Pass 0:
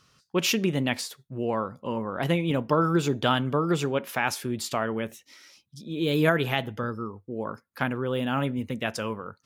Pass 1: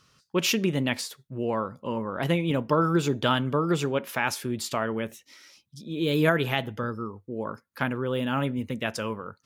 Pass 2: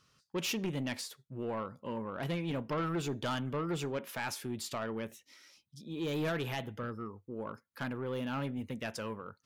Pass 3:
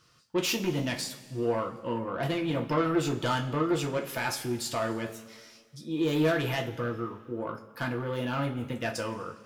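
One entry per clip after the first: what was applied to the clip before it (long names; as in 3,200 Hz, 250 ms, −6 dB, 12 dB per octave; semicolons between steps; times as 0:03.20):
notch filter 740 Hz, Q 15
soft clipping −22 dBFS, distortion −11 dB; level −7 dB
coupled-rooms reverb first 0.24 s, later 1.8 s, from −18 dB, DRR 0.5 dB; level +4 dB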